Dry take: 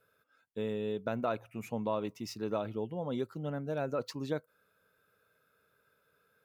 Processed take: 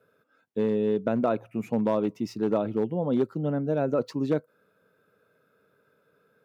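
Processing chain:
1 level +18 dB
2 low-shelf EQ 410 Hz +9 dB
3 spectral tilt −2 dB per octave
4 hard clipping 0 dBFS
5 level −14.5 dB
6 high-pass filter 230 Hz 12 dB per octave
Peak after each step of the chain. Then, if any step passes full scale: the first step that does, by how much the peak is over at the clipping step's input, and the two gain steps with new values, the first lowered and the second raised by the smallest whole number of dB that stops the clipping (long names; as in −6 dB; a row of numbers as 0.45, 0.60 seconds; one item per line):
−1.5, +1.5, +3.5, 0.0, −14.5, −12.0 dBFS
step 2, 3.5 dB
step 1 +14 dB, step 5 −10.5 dB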